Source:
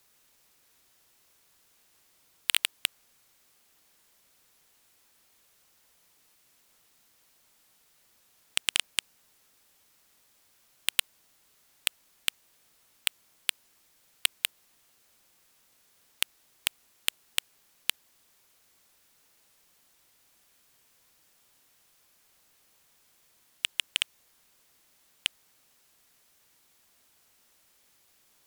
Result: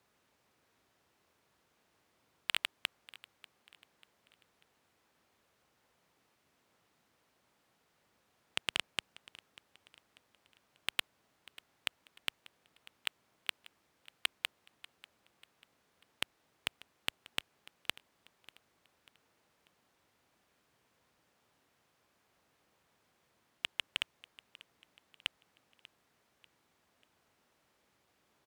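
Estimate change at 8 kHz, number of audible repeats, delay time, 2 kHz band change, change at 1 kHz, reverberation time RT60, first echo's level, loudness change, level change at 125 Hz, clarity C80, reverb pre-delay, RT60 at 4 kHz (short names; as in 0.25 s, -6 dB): -15.5 dB, 2, 0.591 s, -5.5 dB, -1.5 dB, none, -20.0 dB, -8.5 dB, n/a, none, none, none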